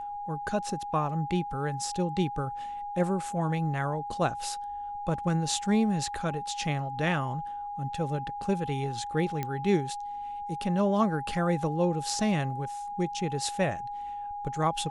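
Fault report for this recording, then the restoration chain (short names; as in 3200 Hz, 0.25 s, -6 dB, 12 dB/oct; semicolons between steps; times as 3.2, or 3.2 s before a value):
tone 820 Hz -34 dBFS
9.43 pop -18 dBFS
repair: de-click; notch 820 Hz, Q 30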